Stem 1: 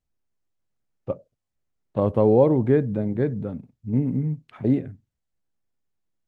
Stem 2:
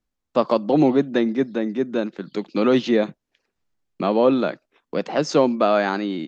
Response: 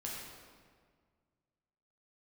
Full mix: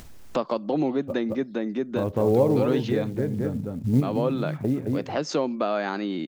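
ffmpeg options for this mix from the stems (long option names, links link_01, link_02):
-filter_complex "[0:a]acrusher=bits=8:mode=log:mix=0:aa=0.000001,volume=2dB,asplit=2[link_01][link_02];[link_02]volume=-12dB[link_03];[1:a]volume=-9.5dB,asplit=2[link_04][link_05];[link_05]apad=whole_len=276562[link_06];[link_01][link_06]sidechaincompress=threshold=-32dB:ratio=8:attack=5.1:release=1170[link_07];[link_03]aecho=0:1:218:1[link_08];[link_07][link_04][link_08]amix=inputs=3:normalize=0,acompressor=mode=upward:threshold=-19dB:ratio=2.5"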